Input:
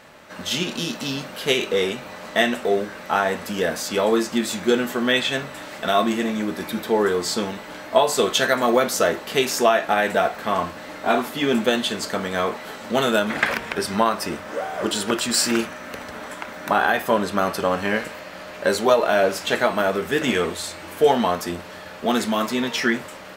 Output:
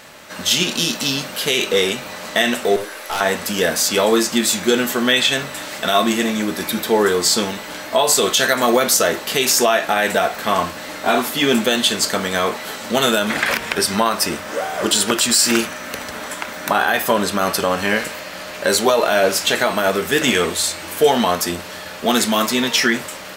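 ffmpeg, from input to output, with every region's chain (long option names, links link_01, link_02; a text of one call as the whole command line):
ffmpeg -i in.wav -filter_complex "[0:a]asettb=1/sr,asplit=3[link_01][link_02][link_03];[link_01]atrim=end=2.764[link_04];[link_02]atrim=start=2.76:end=3.21,asetpts=PTS-STARTPTS,afade=type=in:duration=0.004:curve=qsin,afade=type=out:start_time=0.446:duration=0.004:curve=qsin,highpass=frequency=320:width=0.5412,highpass=frequency=320:width=1.3066,equalizer=frequency=11000:width=4.9:gain=12.5,aeval=exprs='(tanh(15.8*val(0)+0.4)-tanh(0.4))/15.8':channel_layout=same[link_05];[link_03]atrim=start=3.206[link_06];[link_04][link_05]acrossfade=duration=0.004:curve1=hsin:curve2=qsin[link_07];[link_07][link_06]acrossfade=duration=0.004:curve1=qsin:curve2=hsin,highshelf=frequency=3000:gain=10,alimiter=limit=-7.5dB:level=0:latency=1:release=66,volume=3.5dB" out.wav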